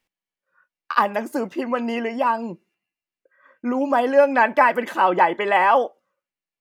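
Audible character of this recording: noise floor -92 dBFS; spectral tilt -2.0 dB/octave

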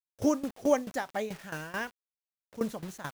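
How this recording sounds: a quantiser's noise floor 8-bit, dither none; tremolo saw down 4.6 Hz, depth 85%

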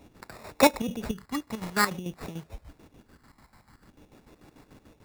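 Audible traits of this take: phasing stages 4, 0.5 Hz, lowest notch 400–3800 Hz; a quantiser's noise floor 12-bit, dither none; chopped level 6.8 Hz, depth 65%, duty 55%; aliases and images of a low sample rate 3.1 kHz, jitter 0%

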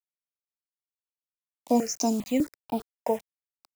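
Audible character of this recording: a quantiser's noise floor 8-bit, dither none; notches that jump at a steady rate 5 Hz 400–1900 Hz

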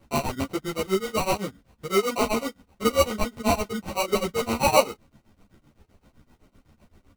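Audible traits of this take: tremolo triangle 7.8 Hz, depth 100%; aliases and images of a low sample rate 1.7 kHz, jitter 0%; a shimmering, thickened sound

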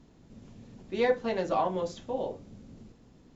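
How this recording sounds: noise floor -59 dBFS; spectral tilt -4.0 dB/octave

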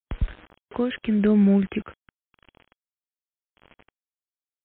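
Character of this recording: tremolo triangle 0.88 Hz, depth 70%; a quantiser's noise floor 8-bit, dither none; MP3

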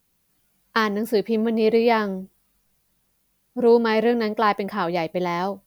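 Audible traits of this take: noise floor -69 dBFS; spectral tilt -4.0 dB/octave

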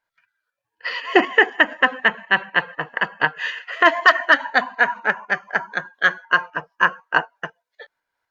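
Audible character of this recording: tremolo saw up 4 Hz, depth 45%; Opus

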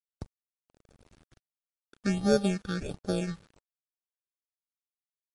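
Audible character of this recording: aliases and images of a low sample rate 1 kHz, jitter 0%; phasing stages 6, 1.4 Hz, lowest notch 620–2700 Hz; a quantiser's noise floor 10-bit, dither none; MP3

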